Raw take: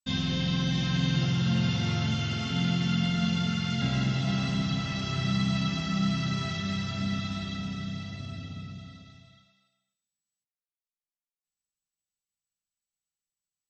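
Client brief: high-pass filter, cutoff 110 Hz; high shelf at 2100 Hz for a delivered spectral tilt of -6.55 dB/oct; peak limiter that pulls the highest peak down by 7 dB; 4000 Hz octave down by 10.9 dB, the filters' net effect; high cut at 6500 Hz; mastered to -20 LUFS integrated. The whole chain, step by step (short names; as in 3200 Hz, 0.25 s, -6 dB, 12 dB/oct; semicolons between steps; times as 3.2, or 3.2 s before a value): HPF 110 Hz; LPF 6500 Hz; high shelf 2100 Hz -5.5 dB; bell 4000 Hz -8.5 dB; gain +13.5 dB; limiter -11 dBFS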